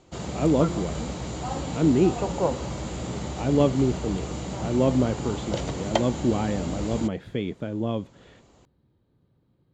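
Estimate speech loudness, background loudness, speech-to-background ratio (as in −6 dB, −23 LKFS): −26.0 LKFS, −31.5 LKFS, 5.5 dB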